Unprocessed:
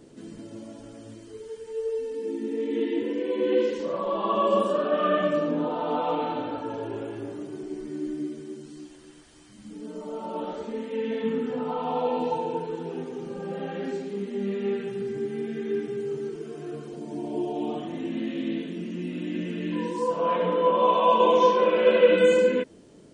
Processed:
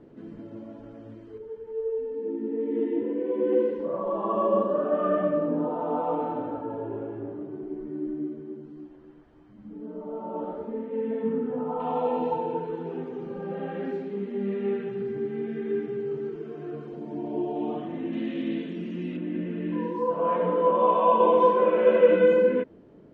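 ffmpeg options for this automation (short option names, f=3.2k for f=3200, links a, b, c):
-af "asetnsamples=n=441:p=0,asendcmd='1.38 lowpass f 1100;11.8 lowpass f 2100;18.13 lowpass f 3300;19.17 lowpass f 1600',lowpass=1.7k"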